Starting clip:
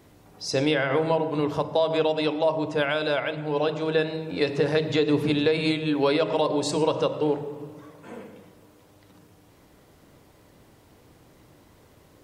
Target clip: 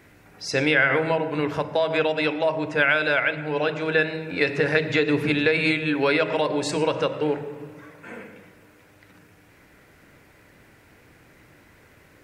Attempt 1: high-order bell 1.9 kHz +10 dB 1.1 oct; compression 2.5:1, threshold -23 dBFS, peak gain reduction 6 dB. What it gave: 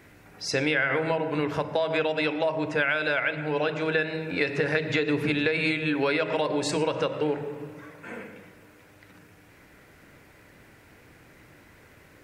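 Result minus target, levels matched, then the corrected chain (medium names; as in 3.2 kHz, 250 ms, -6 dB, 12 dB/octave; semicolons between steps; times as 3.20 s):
compression: peak gain reduction +6 dB
high-order bell 1.9 kHz +10 dB 1.1 oct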